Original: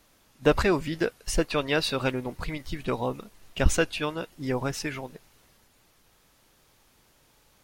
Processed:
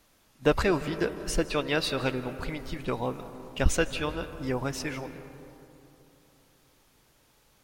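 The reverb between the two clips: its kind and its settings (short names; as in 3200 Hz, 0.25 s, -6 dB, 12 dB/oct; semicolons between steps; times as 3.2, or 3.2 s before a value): digital reverb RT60 3.2 s, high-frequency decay 0.3×, pre-delay 0.12 s, DRR 11.5 dB; gain -2 dB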